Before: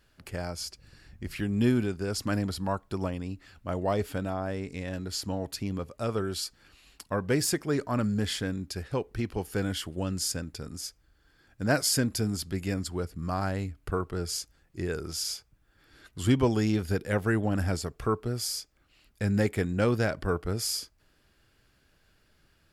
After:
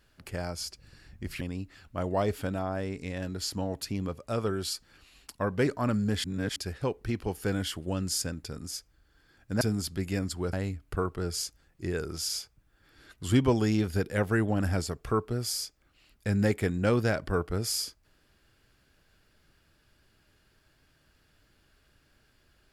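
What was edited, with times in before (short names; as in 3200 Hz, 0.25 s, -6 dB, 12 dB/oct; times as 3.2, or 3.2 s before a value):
1.41–3.12 cut
7.38–7.77 cut
8.34–8.66 reverse
11.71–12.16 cut
13.08–13.48 cut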